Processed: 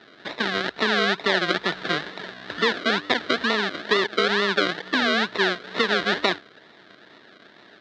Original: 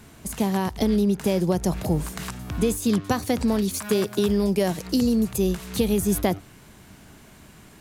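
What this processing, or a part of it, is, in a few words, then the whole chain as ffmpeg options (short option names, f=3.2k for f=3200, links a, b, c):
circuit-bent sampling toy: -af "acrusher=samples=39:mix=1:aa=0.000001:lfo=1:lforange=23.4:lforate=2.2,highpass=510,equalizer=f=540:t=q:w=4:g=-6,equalizer=f=800:t=q:w=4:g=-8,equalizer=f=1.1k:t=q:w=4:g=-5,equalizer=f=1.7k:t=q:w=4:g=7,equalizer=f=2.5k:t=q:w=4:g=-6,equalizer=f=3.8k:t=q:w=4:g=7,lowpass=f=4.3k:w=0.5412,lowpass=f=4.3k:w=1.3066,volume=7dB"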